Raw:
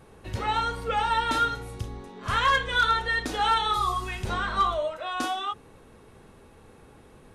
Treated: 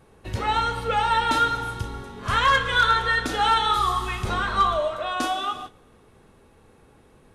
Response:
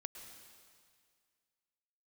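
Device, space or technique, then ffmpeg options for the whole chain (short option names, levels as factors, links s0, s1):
keyed gated reverb: -filter_complex "[0:a]asplit=3[s0][s1][s2];[1:a]atrim=start_sample=2205[s3];[s1][s3]afir=irnorm=-1:irlink=0[s4];[s2]apad=whole_len=324106[s5];[s4][s5]sidechaingate=range=0.0891:threshold=0.00501:ratio=16:detection=peak,volume=2[s6];[s0][s6]amix=inputs=2:normalize=0,volume=0.668"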